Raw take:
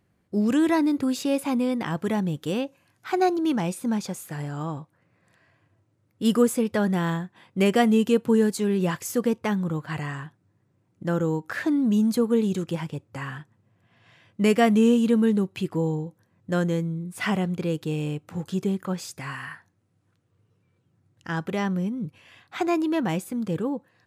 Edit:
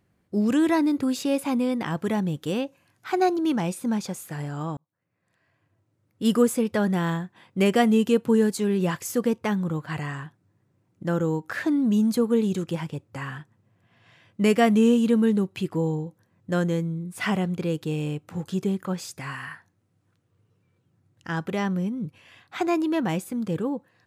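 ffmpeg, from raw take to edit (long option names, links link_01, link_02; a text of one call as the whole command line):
ffmpeg -i in.wav -filter_complex "[0:a]asplit=2[link_01][link_02];[link_01]atrim=end=4.77,asetpts=PTS-STARTPTS,afade=type=out:start_time=4.766:duration=0.004:curve=hsin[link_03];[link_02]atrim=start=4.77,asetpts=PTS-STARTPTS,afade=type=in:duration=1.54[link_04];[link_03][link_04]concat=n=2:v=0:a=1" out.wav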